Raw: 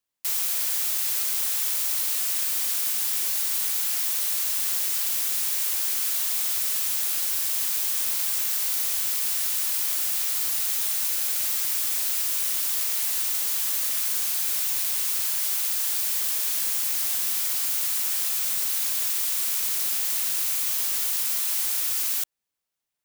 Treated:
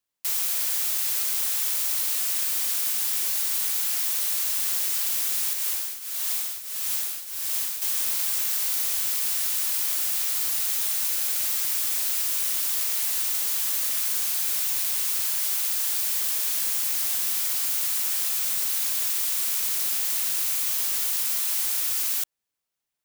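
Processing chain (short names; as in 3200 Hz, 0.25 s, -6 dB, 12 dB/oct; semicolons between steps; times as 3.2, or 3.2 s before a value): 5.53–7.82 tremolo triangle 1.6 Hz, depth 80%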